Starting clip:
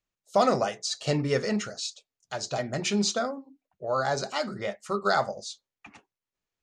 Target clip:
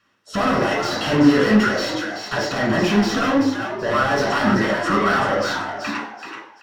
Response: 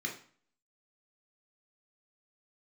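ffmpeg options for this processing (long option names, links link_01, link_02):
-filter_complex "[0:a]asplit=2[link_01][link_02];[link_02]highpass=frequency=720:poles=1,volume=38dB,asoftclip=type=tanh:threshold=-11dB[link_03];[link_01][link_03]amix=inputs=2:normalize=0,lowpass=frequency=1400:poles=1,volume=-6dB,asplit=5[link_04][link_05][link_06][link_07][link_08];[link_05]adelay=382,afreqshift=100,volume=-7dB[link_09];[link_06]adelay=764,afreqshift=200,volume=-16.6dB[link_10];[link_07]adelay=1146,afreqshift=300,volume=-26.3dB[link_11];[link_08]adelay=1528,afreqshift=400,volume=-35.9dB[link_12];[link_04][link_09][link_10][link_11][link_12]amix=inputs=5:normalize=0[link_13];[1:a]atrim=start_sample=2205,asetrate=36162,aresample=44100[link_14];[link_13][link_14]afir=irnorm=-1:irlink=0,volume=-3dB"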